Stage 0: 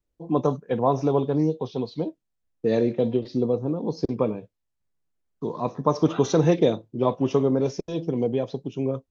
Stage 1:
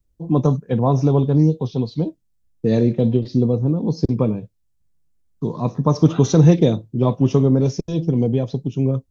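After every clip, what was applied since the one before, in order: tone controls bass +14 dB, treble +7 dB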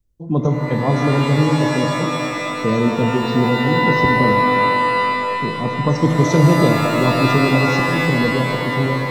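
shimmer reverb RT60 3.2 s, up +12 st, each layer -2 dB, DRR 4 dB; gain -1.5 dB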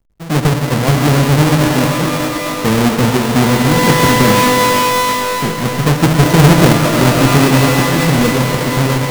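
half-waves squared off

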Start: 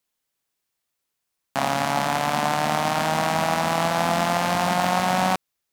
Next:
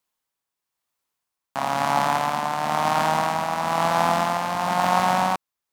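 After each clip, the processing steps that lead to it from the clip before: bell 1000 Hz +7 dB 0.84 oct; tremolo 1 Hz, depth 46%; gain -1.5 dB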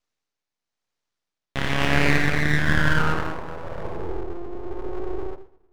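low-pass sweep 3100 Hz -> 200 Hz, 1.36–4.23; two-slope reverb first 0.53 s, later 2.5 s, from -25 dB, DRR 6.5 dB; full-wave rectifier

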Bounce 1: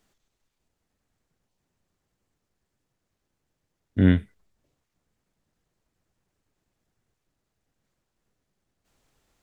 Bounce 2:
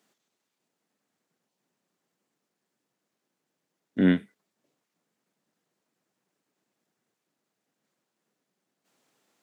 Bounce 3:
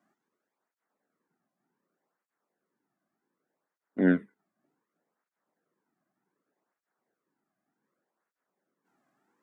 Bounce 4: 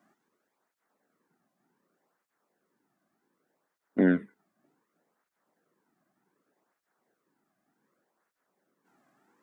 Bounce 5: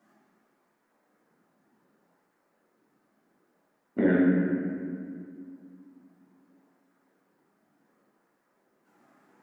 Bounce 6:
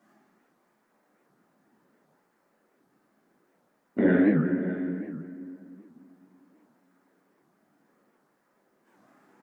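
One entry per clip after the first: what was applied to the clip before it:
HPF 180 Hz 24 dB/oct
resonant high shelf 2200 Hz -12 dB, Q 1.5; tape flanging out of phase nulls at 0.66 Hz, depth 2.3 ms; gain +1.5 dB
compressor, threshold -25 dBFS, peak gain reduction 7.5 dB; gain +6 dB
limiter -18 dBFS, peak gain reduction 5 dB; reverb RT60 2.2 s, pre-delay 5 ms, DRR -6 dB
echo 0.602 s -14.5 dB; record warp 78 rpm, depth 250 cents; gain +1.5 dB

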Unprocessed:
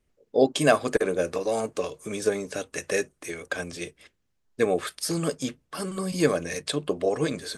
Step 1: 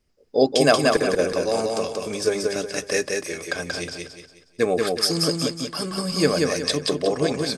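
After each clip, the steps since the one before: bell 5000 Hz +13 dB 0.28 oct; on a send: feedback echo 0.182 s, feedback 36%, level -3 dB; on the sum: gain +2 dB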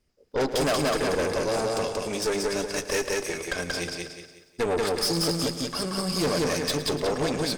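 tube stage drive 24 dB, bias 0.65; lo-fi delay 0.111 s, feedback 55%, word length 10-bit, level -14 dB; gain +2.5 dB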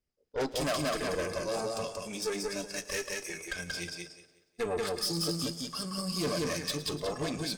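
de-hum 330.9 Hz, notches 30; spectral noise reduction 9 dB; gain -5.5 dB

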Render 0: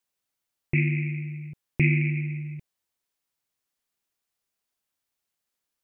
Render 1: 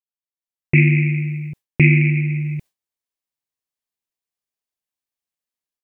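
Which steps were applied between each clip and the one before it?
notch 1400 Hz, Q 10; gate with hold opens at -34 dBFS; AGC gain up to 14 dB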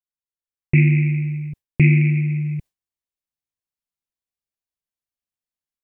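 low shelf 170 Hz +10.5 dB; gain -6 dB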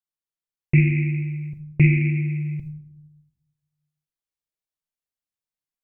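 reverb RT60 0.80 s, pre-delay 6 ms, DRR 9 dB; gain -3 dB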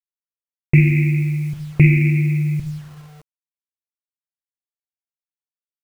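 in parallel at -0.5 dB: compressor 10:1, threshold -24 dBFS, peak gain reduction 13.5 dB; on the sum: requantised 8-bit, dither none; gain +2 dB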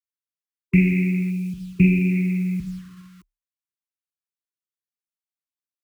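spectral gain 1.31–2.11, 410–2300 Hz -10 dB; frequency shift +33 Hz; brick-wall FIR band-stop 390–1000 Hz; gain -4 dB

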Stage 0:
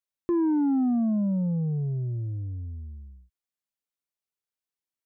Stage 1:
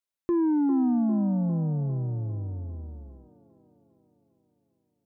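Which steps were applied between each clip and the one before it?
band-limited delay 0.401 s, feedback 57%, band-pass 700 Hz, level -6.5 dB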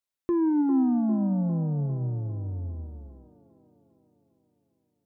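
reverb RT60 1.1 s, pre-delay 5 ms, DRR 15.5 dB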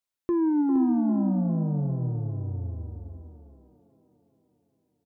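echo 0.467 s -9 dB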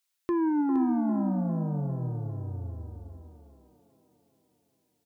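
tilt shelf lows -7 dB; gain +3 dB

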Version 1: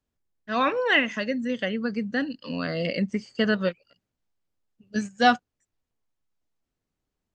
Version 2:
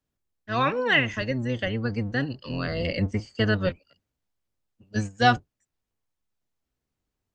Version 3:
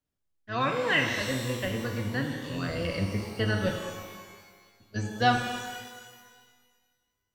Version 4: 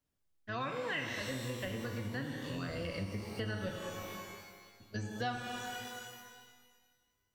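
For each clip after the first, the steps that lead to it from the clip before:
octaver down 1 oct, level +2 dB; low shelf 370 Hz -3.5 dB
shimmer reverb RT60 1.6 s, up +12 st, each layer -8 dB, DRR 3 dB; gain -5 dB
compressor 3:1, threshold -40 dBFS, peak gain reduction 16.5 dB; gain +1 dB

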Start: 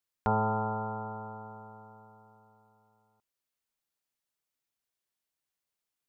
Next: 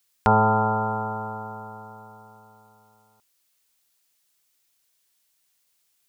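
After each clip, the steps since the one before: high shelf 2100 Hz +11 dB; gain +8.5 dB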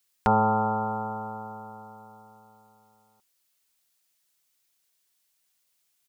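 comb 5.4 ms, depth 31%; gain -3.5 dB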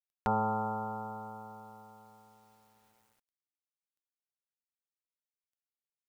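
bit-crush 10-bit; gain -8.5 dB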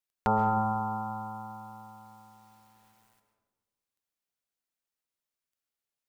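digital reverb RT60 1.5 s, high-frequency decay 0.3×, pre-delay 95 ms, DRR 6.5 dB; gain +4 dB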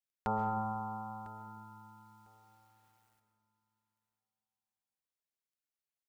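feedback echo 1.001 s, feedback 16%, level -18 dB; gain -8 dB

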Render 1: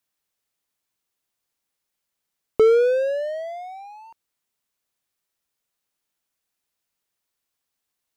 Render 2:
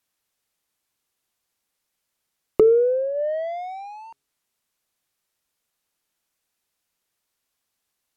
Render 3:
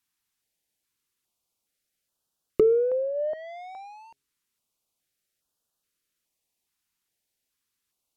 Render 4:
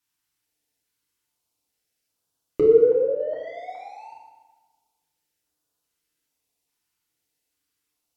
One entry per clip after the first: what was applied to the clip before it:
treble ducked by the level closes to 420 Hz, closed at -20 dBFS; de-hum 136.9 Hz, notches 3; gain +3.5 dB
stepped notch 2.4 Hz 560–2100 Hz; gain -2.5 dB
FDN reverb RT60 1.3 s, low-frequency decay 1.05×, high-frequency decay 0.75×, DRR -5 dB; gain -3.5 dB

